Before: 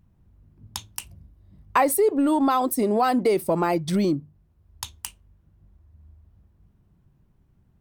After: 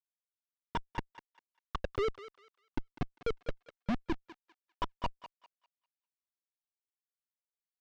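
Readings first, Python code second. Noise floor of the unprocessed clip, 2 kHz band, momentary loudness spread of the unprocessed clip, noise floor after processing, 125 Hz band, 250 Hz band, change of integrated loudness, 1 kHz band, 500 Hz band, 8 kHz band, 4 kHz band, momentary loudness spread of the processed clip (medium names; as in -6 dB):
-63 dBFS, -12.5 dB, 17 LU, under -85 dBFS, -11.5 dB, -18.0 dB, -17.0 dB, -17.0 dB, -16.0 dB, under -30 dB, -11.0 dB, 20 LU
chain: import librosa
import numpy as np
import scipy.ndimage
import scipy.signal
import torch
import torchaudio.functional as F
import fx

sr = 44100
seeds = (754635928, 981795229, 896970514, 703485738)

p1 = fx.sine_speech(x, sr)
p2 = fx.env_lowpass_down(p1, sr, base_hz=830.0, full_db=-19.0)
p3 = fx.tilt_eq(p2, sr, slope=2.0)
p4 = fx.rider(p3, sr, range_db=3, speed_s=0.5)
p5 = p3 + (p4 * librosa.db_to_amplitude(-2.5))
p6 = fx.gate_flip(p5, sr, shuts_db=-21.0, range_db=-24)
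p7 = fx.vibrato(p6, sr, rate_hz=9.8, depth_cents=48.0)
p8 = fx.schmitt(p7, sr, flips_db=-36.5)
p9 = fx.air_absorb(p8, sr, metres=210.0)
p10 = fx.echo_thinned(p9, sr, ms=199, feedback_pct=29, hz=770.0, wet_db=-12)
y = p10 * librosa.db_to_amplitude(16.5)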